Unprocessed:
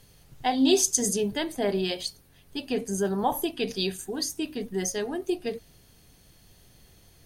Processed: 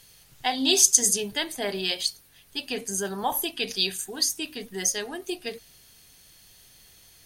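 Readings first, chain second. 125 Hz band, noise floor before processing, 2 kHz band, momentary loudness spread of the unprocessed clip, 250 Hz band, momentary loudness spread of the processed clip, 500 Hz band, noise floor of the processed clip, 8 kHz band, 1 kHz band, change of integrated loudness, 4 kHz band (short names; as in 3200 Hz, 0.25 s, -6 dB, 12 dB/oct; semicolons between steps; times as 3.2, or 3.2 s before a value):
-6.5 dB, -57 dBFS, +4.5 dB, 12 LU, -6.0 dB, 16 LU, -4.5 dB, -56 dBFS, +6.5 dB, -1.0 dB, +2.5 dB, +6.0 dB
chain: tilt shelf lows -7 dB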